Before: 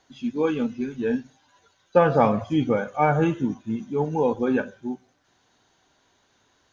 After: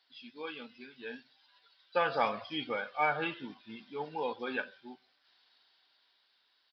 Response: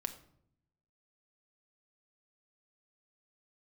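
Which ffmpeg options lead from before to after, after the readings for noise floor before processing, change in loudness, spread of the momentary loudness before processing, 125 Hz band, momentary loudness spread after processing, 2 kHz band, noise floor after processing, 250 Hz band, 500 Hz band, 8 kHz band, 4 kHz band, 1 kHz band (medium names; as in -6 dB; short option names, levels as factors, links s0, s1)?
-66 dBFS, -11.5 dB, 11 LU, -24.0 dB, 19 LU, -3.0 dB, -73 dBFS, -20.0 dB, -14.0 dB, no reading, +1.5 dB, -8.5 dB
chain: -af "aderivative,aresample=11025,aresample=44100,dynaudnorm=f=290:g=11:m=2,volume=1.5"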